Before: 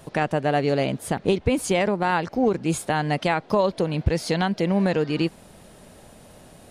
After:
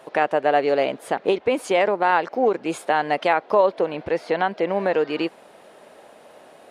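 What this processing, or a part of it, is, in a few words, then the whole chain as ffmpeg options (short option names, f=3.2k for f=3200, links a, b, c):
filter by subtraction: -filter_complex "[0:a]asettb=1/sr,asplit=3[a][b][c];[a]atrim=end=3.334[d];[b]atrim=start=3.33:end=4.93,asetpts=PTS-STARTPTS,afade=t=in:d=0.004:c=qsin,afade=t=out:st=1.596:d=0.004:c=qsin,acrossover=split=2900[e][f];[f]acompressor=threshold=-43dB:ratio=4:attack=1:release=60[g];[e][g]amix=inputs=2:normalize=0[h];[c]atrim=start=4.926[i];[d][h]acrossfade=d=0.004:c1=hsin:c2=qsin[j];[j][i]acrossfade=d=0.004:c1=qsin:c2=hsin,asplit=2[k][l];[l]lowpass=490,volume=-1[m];[k][m]amix=inputs=2:normalize=0,bass=f=250:g=-13,treble=f=4k:g=-11,volume=3dB"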